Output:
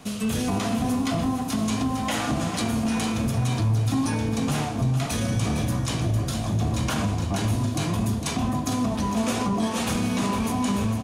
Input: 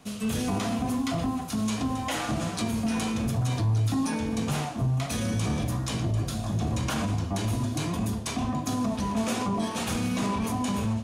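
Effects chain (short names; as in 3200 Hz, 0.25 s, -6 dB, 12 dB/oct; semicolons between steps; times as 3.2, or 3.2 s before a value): feedback echo 0.456 s, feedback 44%, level -9 dB; in parallel at +2.5 dB: compressor, threshold -37 dBFS, peak gain reduction 15.5 dB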